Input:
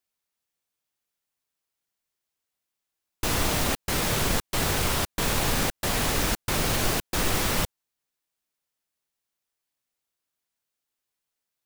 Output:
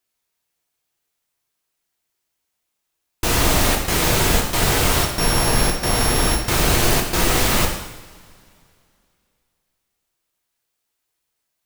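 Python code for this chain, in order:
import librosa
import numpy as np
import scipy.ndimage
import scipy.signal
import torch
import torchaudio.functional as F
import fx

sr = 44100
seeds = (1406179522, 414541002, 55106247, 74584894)

y = fx.sample_sort(x, sr, block=8, at=(5.02, 6.37), fade=0.02)
y = fx.rev_double_slope(y, sr, seeds[0], early_s=0.84, late_s=2.7, knee_db=-19, drr_db=0.5)
y = y * 10.0 ** (5.0 / 20.0)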